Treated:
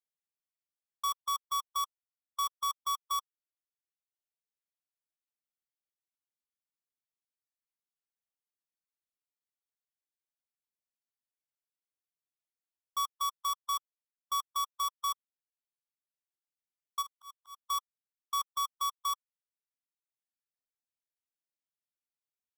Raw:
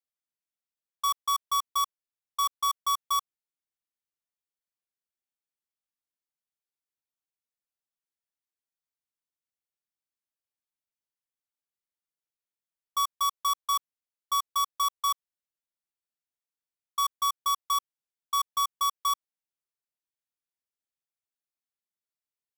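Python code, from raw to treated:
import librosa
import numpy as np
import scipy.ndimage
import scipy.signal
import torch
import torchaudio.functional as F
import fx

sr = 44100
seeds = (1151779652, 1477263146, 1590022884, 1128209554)

y = fx.dereverb_blind(x, sr, rt60_s=1.3)
y = fx.auto_swell(y, sr, attack_ms=385.0, at=(17.01, 17.61), fade=0.02)
y = y * 10.0 ** (-5.0 / 20.0)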